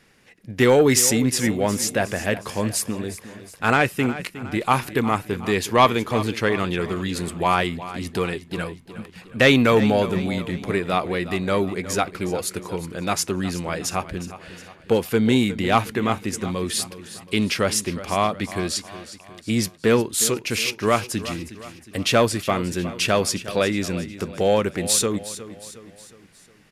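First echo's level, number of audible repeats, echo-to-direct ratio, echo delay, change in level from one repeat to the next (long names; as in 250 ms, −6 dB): −14.5 dB, 4, −13.5 dB, 362 ms, −6.5 dB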